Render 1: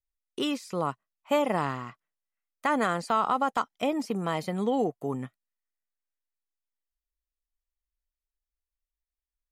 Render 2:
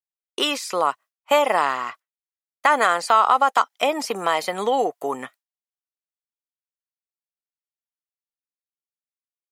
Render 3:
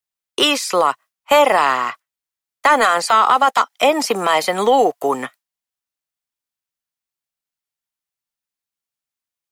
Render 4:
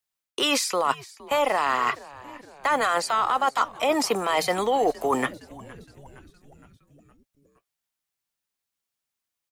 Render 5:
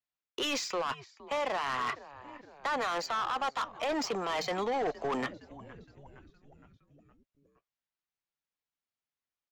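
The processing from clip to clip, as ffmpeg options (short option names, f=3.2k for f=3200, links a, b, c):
-filter_complex "[0:a]agate=range=-33dB:threshold=-46dB:ratio=3:detection=peak,highpass=630,asplit=2[a][b];[b]acompressor=threshold=-36dB:ratio=6,volume=0dB[c];[a][c]amix=inputs=2:normalize=0,volume=8.5dB"
-filter_complex "[0:a]apsyclip=13dB,acrossover=split=360|470|2700[a][b][c][d];[b]acrusher=bits=6:mix=0:aa=0.000001[e];[a][e][c][d]amix=inputs=4:normalize=0,volume=-5.5dB"
-filter_complex "[0:a]areverse,acompressor=threshold=-23dB:ratio=6,areverse,asplit=6[a][b][c][d][e][f];[b]adelay=465,afreqshift=-140,volume=-20dB[g];[c]adelay=930,afreqshift=-280,volume=-24.7dB[h];[d]adelay=1395,afreqshift=-420,volume=-29.5dB[i];[e]adelay=1860,afreqshift=-560,volume=-34.2dB[j];[f]adelay=2325,afreqshift=-700,volume=-38.9dB[k];[a][g][h][i][j][k]amix=inputs=6:normalize=0,volume=2.5dB"
-af "volume=22dB,asoftclip=hard,volume=-22dB,aresample=16000,aresample=44100,adynamicsmooth=sensitivity=4.5:basefreq=5k,volume=-6dB"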